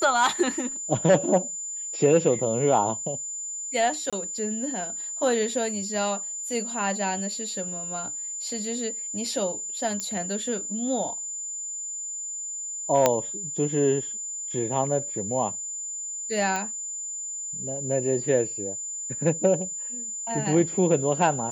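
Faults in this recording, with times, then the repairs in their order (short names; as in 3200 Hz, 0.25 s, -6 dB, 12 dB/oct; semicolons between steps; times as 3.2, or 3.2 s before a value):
tone 7100 Hz -31 dBFS
4.1–4.13 gap 26 ms
10 pop -17 dBFS
13.06 pop -4 dBFS
16.56 pop -15 dBFS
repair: de-click; notch 7100 Hz, Q 30; interpolate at 4.1, 26 ms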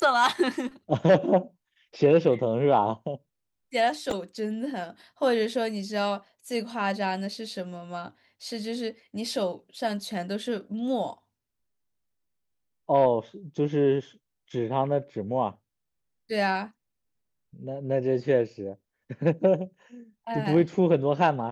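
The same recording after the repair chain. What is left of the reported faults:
13.06 pop
16.56 pop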